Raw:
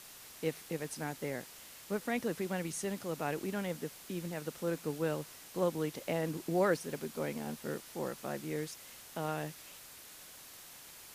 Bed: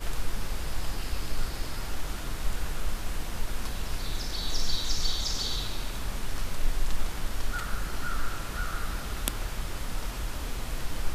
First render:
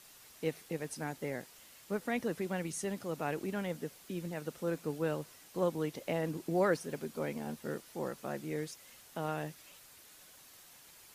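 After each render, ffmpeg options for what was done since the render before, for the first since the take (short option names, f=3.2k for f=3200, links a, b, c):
-af "afftdn=nr=6:nf=-53"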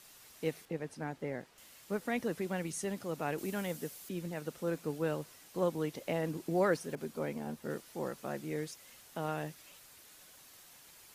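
-filter_complex "[0:a]asettb=1/sr,asplit=3[a][b][c];[a]atrim=end=0.654[d];[b]atrim=start=0.65:end=1.58,asetpts=PTS-STARTPTS,afade=t=in:d=0.004:c=qsin,afade=t=out:st=0.926:d=0.004:c=qsin,lowpass=f=2.1k:p=1[e];[c]atrim=start=1.576[f];[d][e]acrossfade=d=0.004:c1=hsin:c2=qsin[g];[g][f]acrossfade=d=0.004:c1=qsin:c2=hsin,asettb=1/sr,asplit=3[h][i][j];[h]atrim=end=3.384[k];[i]atrim=start=3.38:end=4.09,asetpts=PTS-STARTPTS,afade=t=in:d=0.004:c=qsin,afade=t=out:st=0.706:d=0.004:c=qsin,aemphasis=mode=production:type=cd[l];[j]atrim=start=4.086[m];[k][l]acrossfade=d=0.004:c1=hsin:c2=qsin[n];[n][m]acrossfade=d=0.004:c1=qsin:c2=hsin,asettb=1/sr,asplit=3[o][p][q];[o]atrim=end=6.954[r];[p]atrim=start=6.95:end=7.7,asetpts=PTS-STARTPTS,afade=t=in:d=0.004:c=qsin,afade=t=out:st=0.746:d=0.004:c=qsin,adynamicequalizer=threshold=0.002:dfrequency=1700:dqfactor=0.7:tfrequency=1700:tqfactor=0.7:attack=5:release=100:ratio=0.375:range=2.5:mode=cutabove:tftype=highshelf[s];[q]atrim=start=7.696[t];[r][s]acrossfade=d=0.004:c1=hsin:c2=qsin[u];[u][t]acrossfade=d=0.004:c1=qsin:c2=hsin"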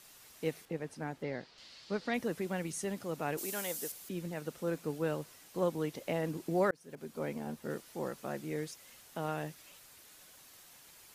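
-filter_complex "[0:a]asettb=1/sr,asplit=3[a][b][c];[a]atrim=end=1.234[d];[b]atrim=start=1.23:end=2.14,asetpts=PTS-STARTPTS,afade=t=in:d=0.004:c=qsin,afade=t=out:st=0.906:d=0.004:c=qsin,lowpass=f=4.5k:t=q:w=3.7[e];[c]atrim=start=2.136[f];[d][e]acrossfade=d=0.004:c1=hsin:c2=qsin[g];[g][f]acrossfade=d=0.004:c1=qsin:c2=hsin,asettb=1/sr,asplit=3[h][i][j];[h]atrim=end=3.374[k];[i]atrim=start=3.37:end=3.92,asetpts=PTS-STARTPTS,afade=t=in:d=0.004:c=qsin,afade=t=out:st=0.546:d=0.004:c=qsin,bass=f=250:g=-13,treble=f=4k:g=10[l];[j]atrim=start=3.916[m];[k][l]acrossfade=d=0.004:c1=hsin:c2=qsin[n];[n][m]acrossfade=d=0.004:c1=qsin:c2=hsin,asplit=2[o][p];[o]atrim=end=6.71,asetpts=PTS-STARTPTS,afade=t=out:st=6.706:d=0.004:c=hsin[q];[p]atrim=start=6.71,asetpts=PTS-STARTPTS,afade=t=in:d=0.56[r];[q][r]concat=n=2:v=0:a=1"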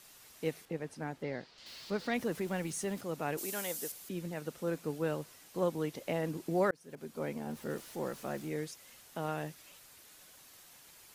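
-filter_complex "[0:a]asettb=1/sr,asplit=3[a][b][c];[a]atrim=end=1.664[d];[b]atrim=start=1.66:end=3.01,asetpts=PTS-STARTPTS,afade=t=in:d=0.004:c=qsin,afade=t=out:st=1.346:d=0.004:c=qsin,aeval=exprs='val(0)+0.5*0.00335*sgn(val(0))':c=same[e];[c]atrim=start=3.006[f];[d][e]acrossfade=d=0.004:c1=hsin:c2=qsin[g];[g][f]acrossfade=d=0.004:c1=qsin:c2=hsin,asettb=1/sr,asplit=3[h][i][j];[h]atrim=end=7.504[k];[i]atrim=start=7.5:end=8.49,asetpts=PTS-STARTPTS,afade=t=in:d=0.004:c=qsin,afade=t=out:st=0.986:d=0.004:c=qsin,aeval=exprs='val(0)+0.5*0.00266*sgn(val(0))':c=same[l];[j]atrim=start=8.486[m];[k][l]acrossfade=d=0.004:c1=hsin:c2=qsin[n];[n][m]acrossfade=d=0.004:c1=qsin:c2=hsin"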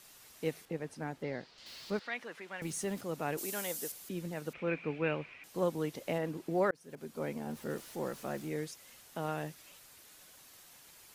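-filter_complex "[0:a]asettb=1/sr,asplit=3[a][b][c];[a]atrim=end=1.994[d];[b]atrim=start=1.99:end=2.62,asetpts=PTS-STARTPTS,afade=t=in:d=0.004:c=qsin,afade=t=out:st=0.626:d=0.004:c=qsin,bandpass=f=1.9k:t=q:w=0.89[e];[c]atrim=start=2.616[f];[d][e]acrossfade=d=0.004:c1=hsin:c2=qsin[g];[g][f]acrossfade=d=0.004:c1=qsin:c2=hsin,asettb=1/sr,asplit=3[h][i][j];[h]atrim=end=4.534[k];[i]atrim=start=4.53:end=5.44,asetpts=PTS-STARTPTS,afade=t=in:d=0.004:c=qsin,afade=t=out:st=0.906:d=0.004:c=qsin,lowpass=f=2.4k:t=q:w=10[l];[j]atrim=start=5.436[m];[k][l]acrossfade=d=0.004:c1=hsin:c2=qsin[n];[n][m]acrossfade=d=0.004:c1=qsin:c2=hsin,asettb=1/sr,asplit=3[o][p][q];[o]atrim=end=6.184[r];[p]atrim=start=6.18:end=6.75,asetpts=PTS-STARTPTS,afade=t=in:d=0.004:c=qsin,afade=t=out:st=0.566:d=0.004:c=qsin,bass=f=250:g=-3,treble=f=4k:g=-6[s];[q]atrim=start=6.746[t];[r][s]acrossfade=d=0.004:c1=hsin:c2=qsin[u];[u][t]acrossfade=d=0.004:c1=qsin:c2=hsin"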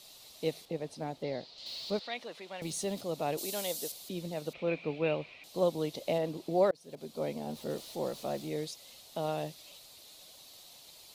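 -af "equalizer=f=630:t=o:w=0.67:g=7,equalizer=f=1.6k:t=o:w=0.67:g=-10,equalizer=f=4k:t=o:w=0.67:g=12"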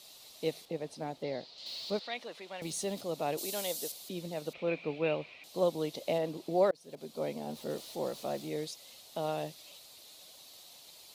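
-af "lowshelf=f=110:g=-8"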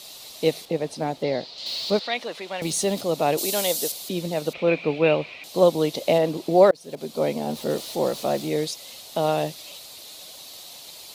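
-af "volume=12dB"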